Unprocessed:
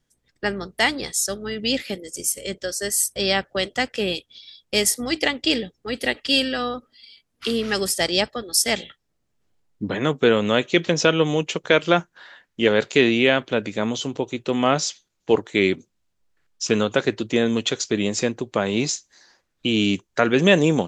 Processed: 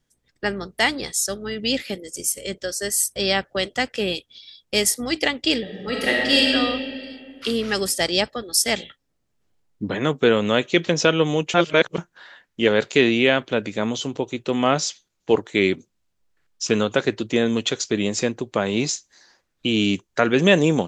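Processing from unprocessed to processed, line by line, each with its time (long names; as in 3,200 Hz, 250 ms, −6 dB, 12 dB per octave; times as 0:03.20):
0:05.61–0:06.47: thrown reverb, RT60 2.3 s, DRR −3 dB
0:11.54–0:11.98: reverse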